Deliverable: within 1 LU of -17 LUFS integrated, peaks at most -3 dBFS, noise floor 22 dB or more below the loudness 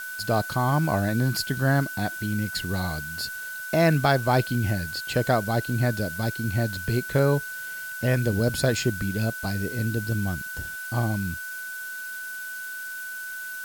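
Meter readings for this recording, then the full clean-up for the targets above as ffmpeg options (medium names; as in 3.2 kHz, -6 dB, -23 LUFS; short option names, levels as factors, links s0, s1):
steady tone 1.5 kHz; tone level -33 dBFS; noise floor -35 dBFS; noise floor target -48 dBFS; loudness -26.0 LUFS; peak level -8.5 dBFS; loudness target -17.0 LUFS
-> -af "bandreject=f=1500:w=30"
-af "afftdn=nr=13:nf=-35"
-af "volume=2.82,alimiter=limit=0.708:level=0:latency=1"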